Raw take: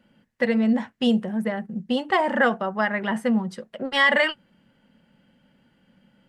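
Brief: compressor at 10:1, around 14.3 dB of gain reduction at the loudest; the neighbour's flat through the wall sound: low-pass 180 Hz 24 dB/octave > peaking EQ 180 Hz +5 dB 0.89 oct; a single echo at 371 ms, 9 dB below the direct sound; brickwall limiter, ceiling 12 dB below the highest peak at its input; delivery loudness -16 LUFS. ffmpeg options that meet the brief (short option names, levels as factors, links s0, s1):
-af "acompressor=threshold=0.0316:ratio=10,alimiter=level_in=2.24:limit=0.0631:level=0:latency=1,volume=0.447,lowpass=f=180:w=0.5412,lowpass=f=180:w=1.3066,equalizer=f=180:t=o:w=0.89:g=5,aecho=1:1:371:0.355,volume=26.6"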